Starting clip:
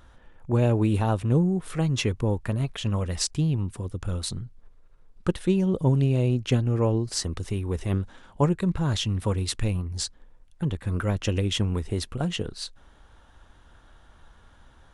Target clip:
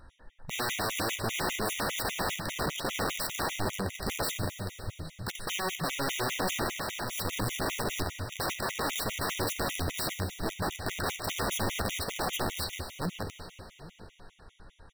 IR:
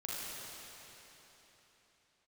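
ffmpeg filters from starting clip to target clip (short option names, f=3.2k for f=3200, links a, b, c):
-filter_complex "[0:a]asettb=1/sr,asplit=3[a][b][c];[a]atrim=end=5.464[d];[b]atrim=start=5.46:end=6.15,asetpts=PTS-STARTPTS,afade=t=in:d=0.004:c=qsin,afade=t=out:st=0.686:d=0.004:c=qsin,highpass=f=120:w=0.5412,highpass=f=120:w=1.3066[e];[c]atrim=start=6.146[f];[d][e]acrossfade=d=0.004:c1=hsin:c2=qsin[g];[g][f]acrossfade=d=0.004:c1=qsin:c2=hsin,asplit=2[h][i];[i]adelay=810,lowpass=f=840:p=1,volume=-5dB,asplit=2[j][k];[k]adelay=810,lowpass=f=840:p=1,volume=0.17,asplit=2[l][m];[m]adelay=810,lowpass=f=840:p=1,volume=0.17[n];[h][j][l][n]amix=inputs=4:normalize=0,aeval=exprs='(mod(17.8*val(0)+1,2)-1)/17.8':c=same,asettb=1/sr,asplit=3[o][p][q];[o]atrim=end=6.674[r];[p]atrim=start=6.67:end=7.18,asetpts=PTS-STARTPTS,afade=t=in:d=0.004:c=qsin,afade=t=out:st=0.506:d=0.004:c=qsin,acompressor=threshold=-32dB:ratio=6[s];[q]atrim=start=7.176[t];[r][s]acrossfade=d=0.004:c1=hsin:c2=qsin[u];[u][t]acrossfade=d=0.004:c1=qsin:c2=hsin,asplit=2[v][w];[1:a]atrim=start_sample=2205,lowshelf=f=270:g=-12,adelay=11[x];[w][x]afir=irnorm=-1:irlink=0,volume=-6.5dB[y];[v][y]amix=inputs=2:normalize=0,afftfilt=real='re*gt(sin(2*PI*5*pts/sr)*(1-2*mod(floor(b*sr/1024/1900),2)),0)':imag='im*gt(sin(2*PI*5*pts/sr)*(1-2*mod(floor(b*sr/1024/1900),2)),0)':win_size=1024:overlap=0.75"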